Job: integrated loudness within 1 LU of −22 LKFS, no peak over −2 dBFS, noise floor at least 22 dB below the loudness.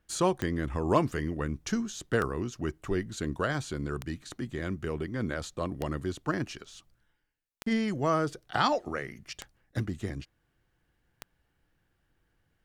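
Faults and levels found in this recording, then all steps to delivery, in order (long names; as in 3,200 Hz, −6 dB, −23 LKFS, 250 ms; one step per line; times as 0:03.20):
number of clicks 7; integrated loudness −32.0 LKFS; sample peak −10.0 dBFS; target loudness −22.0 LKFS
→ click removal
level +10 dB
brickwall limiter −2 dBFS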